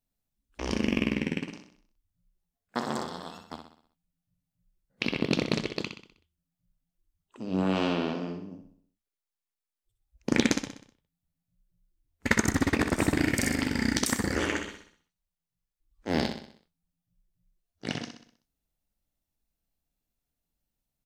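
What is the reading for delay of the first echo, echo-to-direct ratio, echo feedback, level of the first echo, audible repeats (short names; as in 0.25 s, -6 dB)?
63 ms, -6.0 dB, 48%, -7.0 dB, 5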